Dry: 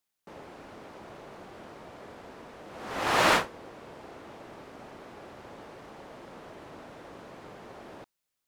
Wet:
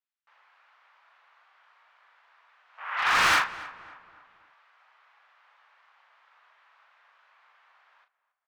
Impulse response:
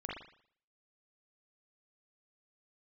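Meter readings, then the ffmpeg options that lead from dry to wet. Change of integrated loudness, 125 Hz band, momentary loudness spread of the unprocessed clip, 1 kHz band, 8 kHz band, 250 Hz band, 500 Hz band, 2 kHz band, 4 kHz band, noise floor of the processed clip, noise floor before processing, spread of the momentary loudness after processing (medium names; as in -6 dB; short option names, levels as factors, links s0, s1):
+1.5 dB, -8.0 dB, 21 LU, +1.0 dB, +1.0 dB, -11.5 dB, -11.5 dB, +4.5 dB, +2.0 dB, -82 dBFS, -84 dBFS, 22 LU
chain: -filter_complex "[0:a]highpass=f=1100:w=0.5412,highpass=f=1100:w=1.3066,afwtdn=0.00631,lowpass=2900,volume=26.6,asoftclip=hard,volume=0.0376,asplit=2[s0][s1];[s1]adelay=38,volume=0.422[s2];[s0][s2]amix=inputs=2:normalize=0,asplit=2[s3][s4];[s4]adelay=275,lowpass=f=2200:p=1,volume=0.15,asplit=2[s5][s6];[s6]adelay=275,lowpass=f=2200:p=1,volume=0.46,asplit=2[s7][s8];[s8]adelay=275,lowpass=f=2200:p=1,volume=0.46,asplit=2[s9][s10];[s10]adelay=275,lowpass=f=2200:p=1,volume=0.46[s11];[s3][s5][s7][s9][s11]amix=inputs=5:normalize=0,volume=2.82"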